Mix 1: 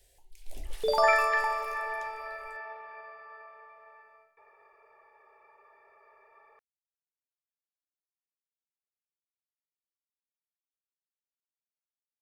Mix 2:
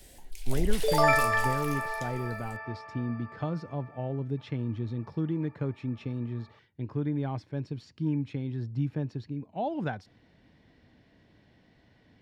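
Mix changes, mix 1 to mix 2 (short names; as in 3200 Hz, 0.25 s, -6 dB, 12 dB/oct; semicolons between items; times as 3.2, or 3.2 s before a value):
speech: unmuted; first sound +11.0 dB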